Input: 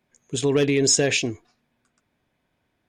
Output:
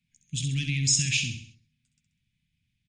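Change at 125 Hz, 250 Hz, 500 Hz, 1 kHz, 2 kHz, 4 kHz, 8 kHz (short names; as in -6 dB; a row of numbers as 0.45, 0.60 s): +1.0 dB, -11.0 dB, under -35 dB, under -35 dB, -3.5 dB, -2.5 dB, -3.0 dB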